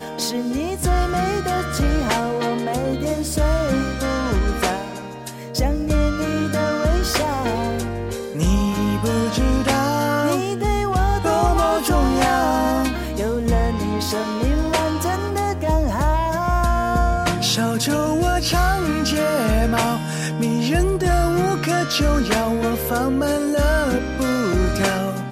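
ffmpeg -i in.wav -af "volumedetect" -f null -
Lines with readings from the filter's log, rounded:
mean_volume: -19.5 dB
max_volume: -7.8 dB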